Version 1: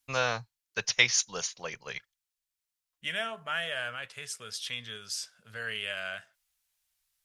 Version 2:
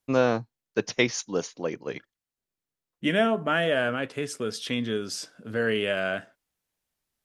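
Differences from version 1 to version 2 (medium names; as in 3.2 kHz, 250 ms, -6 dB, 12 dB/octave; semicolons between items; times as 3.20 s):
first voice -7.0 dB; master: remove amplifier tone stack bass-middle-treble 10-0-10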